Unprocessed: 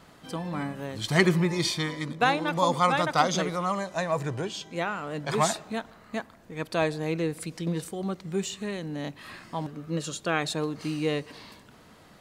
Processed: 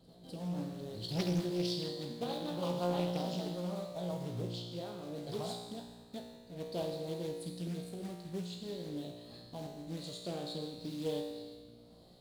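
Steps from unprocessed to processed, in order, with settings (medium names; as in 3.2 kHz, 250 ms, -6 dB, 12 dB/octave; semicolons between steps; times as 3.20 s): FFT filter 160 Hz 0 dB, 310 Hz -2 dB, 690 Hz -1 dB, 1.4 kHz -18 dB, 2.4 kHz -19 dB, 4.2 kHz +5 dB, 6 kHz -15 dB, 9.8 kHz -4 dB; in parallel at +1 dB: compression 6:1, threshold -35 dBFS, peak gain reduction 15.5 dB; on the sum: short-mantissa float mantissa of 2-bit; rotary cabinet horn 6.3 Hz, later 1 Hz, at 9.06 s; feedback comb 59 Hz, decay 1.4 s, harmonics all, mix 90%; on a send: reverse echo 252 ms -20 dB; on the sum: loudspeaker Doppler distortion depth 0.58 ms; trim +3 dB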